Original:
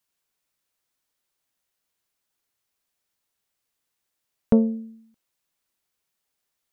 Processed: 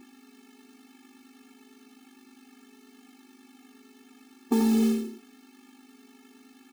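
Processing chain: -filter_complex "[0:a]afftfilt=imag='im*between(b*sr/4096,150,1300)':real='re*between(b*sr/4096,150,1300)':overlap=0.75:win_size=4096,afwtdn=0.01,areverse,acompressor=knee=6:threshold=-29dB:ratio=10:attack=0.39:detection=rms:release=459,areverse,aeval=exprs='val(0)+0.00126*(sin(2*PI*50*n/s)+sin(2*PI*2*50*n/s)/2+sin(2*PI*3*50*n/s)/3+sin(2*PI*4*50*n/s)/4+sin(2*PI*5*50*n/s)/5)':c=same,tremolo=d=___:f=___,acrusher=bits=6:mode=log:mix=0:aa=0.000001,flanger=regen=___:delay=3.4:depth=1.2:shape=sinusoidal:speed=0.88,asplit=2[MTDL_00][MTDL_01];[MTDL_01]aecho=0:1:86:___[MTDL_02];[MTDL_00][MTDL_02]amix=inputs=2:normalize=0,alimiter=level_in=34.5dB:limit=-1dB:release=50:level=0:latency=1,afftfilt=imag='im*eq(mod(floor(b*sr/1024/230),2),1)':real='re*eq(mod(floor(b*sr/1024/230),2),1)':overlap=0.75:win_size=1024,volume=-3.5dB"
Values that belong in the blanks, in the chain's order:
0.261, 170, -23, 0.668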